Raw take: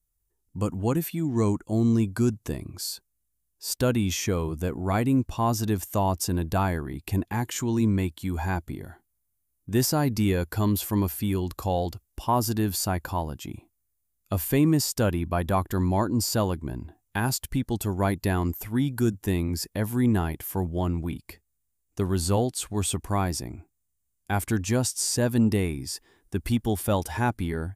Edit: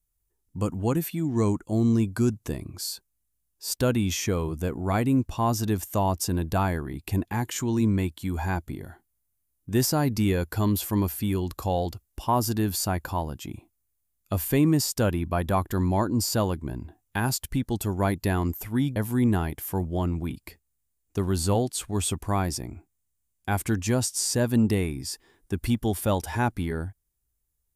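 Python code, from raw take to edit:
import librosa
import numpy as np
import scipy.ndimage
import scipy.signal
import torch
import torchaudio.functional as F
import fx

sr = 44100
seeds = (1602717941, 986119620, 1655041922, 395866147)

y = fx.edit(x, sr, fx.cut(start_s=18.96, length_s=0.82), tone=tone)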